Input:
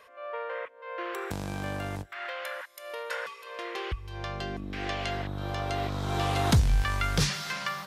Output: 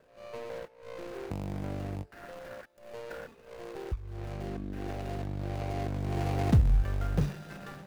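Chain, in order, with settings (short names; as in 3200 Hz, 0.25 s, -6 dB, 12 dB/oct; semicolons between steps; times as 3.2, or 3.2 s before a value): median filter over 41 samples; de-hum 436.5 Hz, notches 36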